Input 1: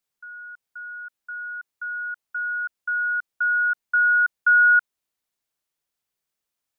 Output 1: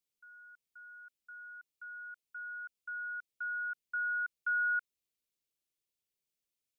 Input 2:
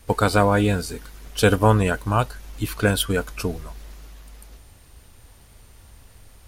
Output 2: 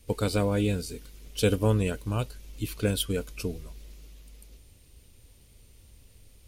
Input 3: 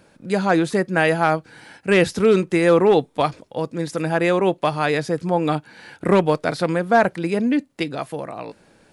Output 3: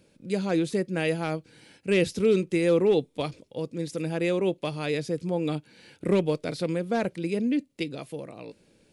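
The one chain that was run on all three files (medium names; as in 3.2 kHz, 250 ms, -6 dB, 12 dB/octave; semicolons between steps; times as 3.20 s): high-order bell 1.1 kHz -10 dB; trim -6 dB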